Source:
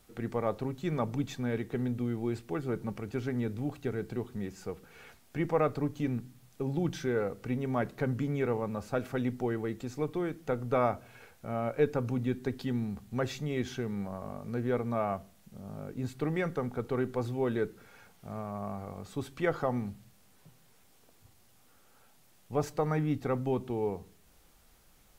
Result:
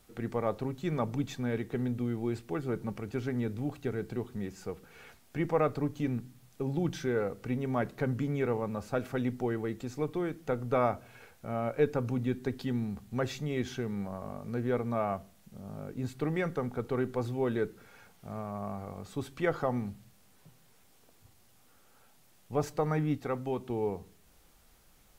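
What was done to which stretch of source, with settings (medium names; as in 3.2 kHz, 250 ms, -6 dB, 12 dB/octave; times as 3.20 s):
23.15–23.69 s: bass shelf 330 Hz -6.5 dB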